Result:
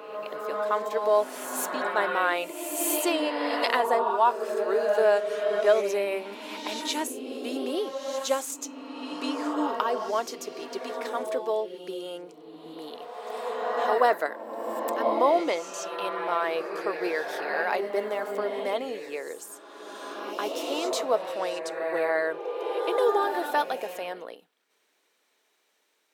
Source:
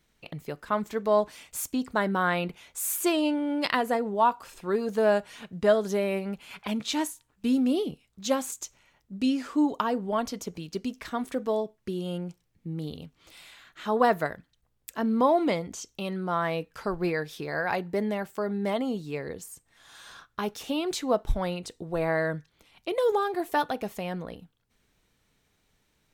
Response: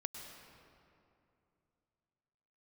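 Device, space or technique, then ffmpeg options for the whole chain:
ghost voice: -filter_complex "[0:a]areverse[s0];[1:a]atrim=start_sample=2205[s1];[s0][s1]afir=irnorm=-1:irlink=0,areverse,highpass=f=360:w=0.5412,highpass=f=360:w=1.3066,volume=1.58"

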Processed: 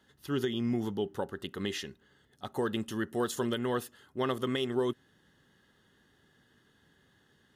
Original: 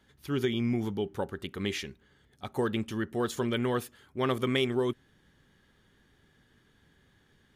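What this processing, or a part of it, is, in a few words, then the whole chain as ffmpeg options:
PA system with an anti-feedback notch: -filter_complex "[0:a]highpass=f=140:p=1,asuperstop=centerf=2300:order=4:qfactor=6.3,alimiter=limit=0.106:level=0:latency=1:release=234,asettb=1/sr,asplit=3[s0][s1][s2];[s0]atrim=end=2.684[s3];[s1]atrim=start=2.68:end=3.59,asetpts=PTS-STARTPTS,afade=t=in:d=0.004:c=qsin,afade=t=out:st=0.906:d=0.004:c=qsin,equalizer=f=11000:t=o:w=1.3:g=5.5[s4];[s2]atrim=start=3.586[s5];[s3][s4]acrossfade=d=0.004:c1=hsin:c2=qsin[s6];[s6][s5]acrossfade=d=0.004:c1=qsin:c2=hsin"

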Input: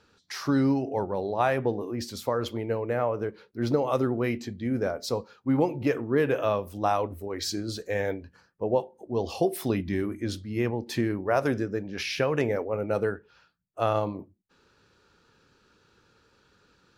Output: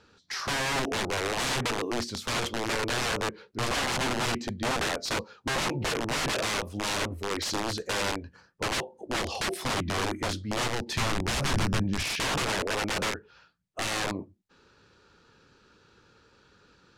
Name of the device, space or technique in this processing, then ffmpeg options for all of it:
overflowing digital effects unit: -filter_complex "[0:a]aeval=exprs='(mod(20*val(0)+1,2)-1)/20':c=same,lowpass=8300,asettb=1/sr,asplit=3[s0][s1][s2];[s0]atrim=end=10.684[s3];[s1]atrim=start=10.68:end=12.05,asetpts=PTS-STARTPTS,afade=t=in:d=0.004:c=qsin,afade=t=out:st=1.366:d=0.004:c=qsin,asubboost=boost=10.5:cutoff=200[s4];[s2]atrim=start=12.046[s5];[s3][s4]acrossfade=d=0.004:c1=hsin:c2=qsin[s6];[s6][s5]acrossfade=d=0.004:c1=qsin:c2=hsin,volume=1.41"

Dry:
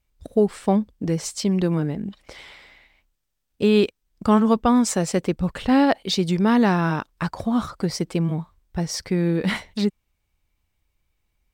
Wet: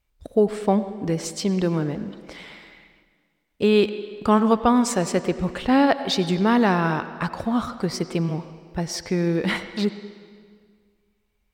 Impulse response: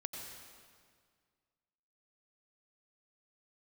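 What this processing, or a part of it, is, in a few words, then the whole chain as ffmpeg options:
filtered reverb send: -filter_complex "[0:a]asplit=2[s0][s1];[s1]highpass=280,lowpass=4900[s2];[1:a]atrim=start_sample=2205[s3];[s2][s3]afir=irnorm=-1:irlink=0,volume=0.596[s4];[s0][s4]amix=inputs=2:normalize=0,volume=0.841"

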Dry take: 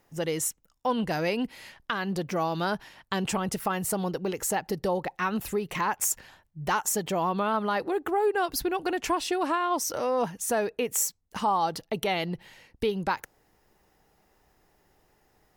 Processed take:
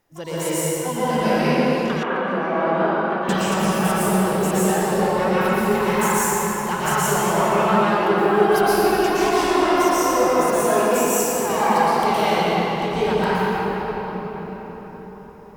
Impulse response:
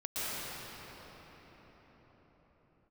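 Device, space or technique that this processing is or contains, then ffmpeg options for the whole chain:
shimmer-style reverb: -filter_complex "[0:a]asplit=2[s0][s1];[s1]asetrate=88200,aresample=44100,atempo=0.5,volume=0.251[s2];[s0][s2]amix=inputs=2:normalize=0[s3];[1:a]atrim=start_sample=2205[s4];[s3][s4]afir=irnorm=-1:irlink=0,asettb=1/sr,asplit=3[s5][s6][s7];[s5]atrim=end=2.034[s8];[s6]atrim=start=2.03:end=3.29,asetpts=PTS-STARTPTS,afade=t=in:d=0.004:c=qsin,afade=t=out:st=1.256:d=0.004:c=qsin,acrossover=split=230 2500:gain=0.2 1 0.0631[s9][s10][s11];[s9][s10][s11]amix=inputs=3:normalize=0[s12];[s7]atrim=start=3.286[s13];[s8][s12]acrossfade=d=0.004:c1=hsin:c2=qsin[s14];[s14][s13]acrossfade=d=0.004:c1=qsin:c2=hsin,volume=1.26"

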